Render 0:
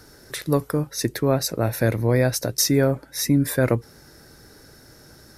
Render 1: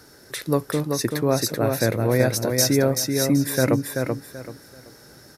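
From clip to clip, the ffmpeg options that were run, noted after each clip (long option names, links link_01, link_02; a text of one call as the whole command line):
ffmpeg -i in.wav -filter_complex "[0:a]highpass=frequency=120:poles=1,asplit=2[link_01][link_02];[link_02]aecho=0:1:383|766|1149|1532:0.596|0.155|0.0403|0.0105[link_03];[link_01][link_03]amix=inputs=2:normalize=0" out.wav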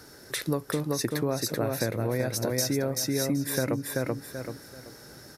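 ffmpeg -i in.wav -af "acompressor=threshold=-24dB:ratio=6" out.wav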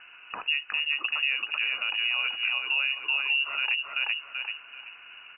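ffmpeg -i in.wav -af "alimiter=limit=-19dB:level=0:latency=1:release=66,lowpass=frequency=2600:width_type=q:width=0.5098,lowpass=frequency=2600:width_type=q:width=0.6013,lowpass=frequency=2600:width_type=q:width=0.9,lowpass=frequency=2600:width_type=q:width=2.563,afreqshift=-3000,volume=2dB" out.wav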